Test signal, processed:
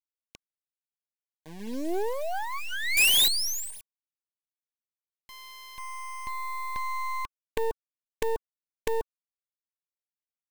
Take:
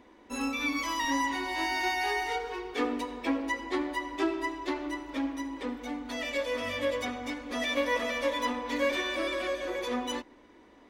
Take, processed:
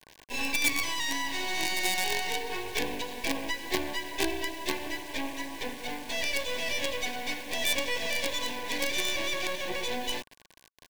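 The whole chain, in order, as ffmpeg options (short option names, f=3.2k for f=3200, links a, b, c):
-filter_complex "[0:a]acrossover=split=420|3000[a][b][c];[b]acompressor=threshold=-37dB:ratio=5[d];[a][d][c]amix=inputs=3:normalize=0,highpass=f=280:w=0.5412,highpass=f=280:w=1.3066,equalizer=f=300:t=q:w=4:g=-4,equalizer=f=540:t=q:w=4:g=-5,equalizer=f=970:t=q:w=4:g=-6,equalizer=f=1.7k:t=q:w=4:g=-6,equalizer=f=2.5k:t=q:w=4:g=4,equalizer=f=3.7k:t=q:w=4:g=3,lowpass=f=6.3k:w=0.5412,lowpass=f=6.3k:w=1.3066,asplit=2[e][f];[f]highpass=f=720:p=1,volume=14dB,asoftclip=type=tanh:threshold=-19dB[g];[e][g]amix=inputs=2:normalize=0,lowpass=f=3.1k:p=1,volume=-6dB,acrusher=bits=5:dc=4:mix=0:aa=0.000001,asuperstop=centerf=1300:order=12:qfactor=3.7,volume=5dB"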